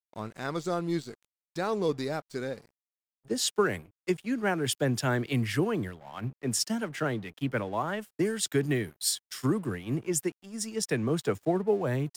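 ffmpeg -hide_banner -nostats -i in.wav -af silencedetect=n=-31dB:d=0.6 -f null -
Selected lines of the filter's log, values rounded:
silence_start: 2.54
silence_end: 3.31 | silence_duration: 0.77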